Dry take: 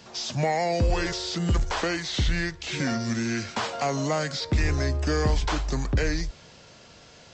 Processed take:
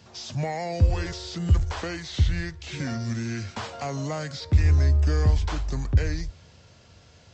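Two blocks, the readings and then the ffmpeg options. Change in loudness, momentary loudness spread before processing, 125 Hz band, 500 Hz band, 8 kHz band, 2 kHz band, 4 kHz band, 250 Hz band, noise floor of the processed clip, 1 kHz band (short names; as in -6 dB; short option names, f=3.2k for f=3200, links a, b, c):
+0.5 dB, 4 LU, +4.5 dB, -5.5 dB, -6.0 dB, -6.0 dB, -6.0 dB, -3.5 dB, -54 dBFS, -6.0 dB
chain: -af "equalizer=f=83:w=1.2:g=15,volume=-6dB"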